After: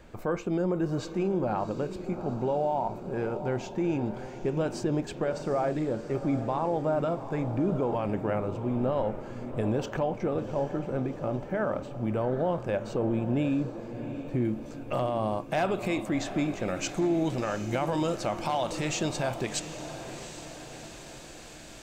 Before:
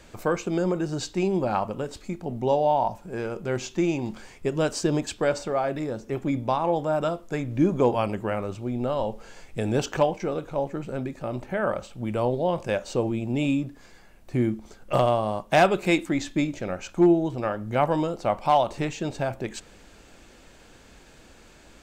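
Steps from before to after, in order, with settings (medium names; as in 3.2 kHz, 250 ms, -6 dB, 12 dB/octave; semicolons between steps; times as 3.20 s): peaking EQ 7.9 kHz -11.5 dB 3 oct, from 14.45 s -3 dB, from 16.68 s +8 dB; peak limiter -20 dBFS, peak gain reduction 11.5 dB; echo that smears into a reverb 744 ms, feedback 56%, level -11 dB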